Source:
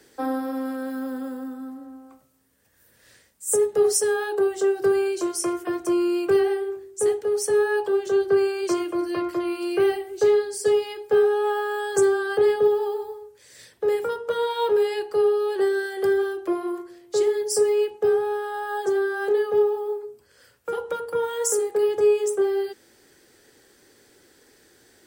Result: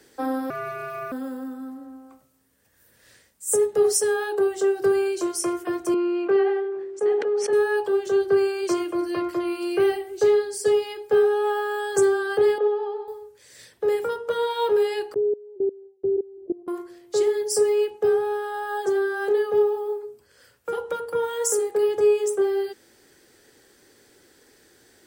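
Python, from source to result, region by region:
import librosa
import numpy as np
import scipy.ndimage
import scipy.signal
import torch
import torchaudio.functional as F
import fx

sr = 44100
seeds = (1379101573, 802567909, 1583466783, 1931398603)

y = fx.chain(x, sr, fx.self_delay(depth_ms=0.07),
    fx.ring_mod(carrier_hz=930.0), at=(0.5, 1.12))
y = fx.chain(y, sr, fx.bandpass_edges(low_hz=270.0, high_hz=2400.0),
    fx.sustainer(db_per_s=34.0), at=(5.94, 7.53))
y = fx.chain(y, sr, fx.highpass(hz=400.0, slope=24),
    fx.air_absorb(metres=270.0), at=(12.58, 13.08))
y = fx.chain(y, sr, fx.level_steps(step_db=21),
    fx.steep_lowpass(hz=540.0, slope=36),
    fx.gate_hold(open_db=-38.0, close_db=-41.0, hold_ms=71.0, range_db=-21, attack_ms=1.4, release_ms=100.0), at=(15.14, 16.68))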